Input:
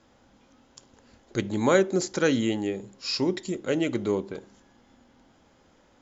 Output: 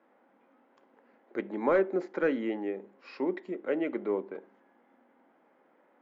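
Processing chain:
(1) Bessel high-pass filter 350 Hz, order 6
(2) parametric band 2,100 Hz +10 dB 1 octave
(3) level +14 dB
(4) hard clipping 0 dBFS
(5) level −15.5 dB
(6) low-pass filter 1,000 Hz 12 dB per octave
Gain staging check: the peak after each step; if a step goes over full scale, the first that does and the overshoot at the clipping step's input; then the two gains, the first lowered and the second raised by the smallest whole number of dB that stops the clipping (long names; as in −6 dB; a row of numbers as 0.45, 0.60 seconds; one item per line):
−9.0, −6.0, +8.0, 0.0, −15.5, −15.5 dBFS
step 3, 8.0 dB
step 3 +6 dB, step 5 −7.5 dB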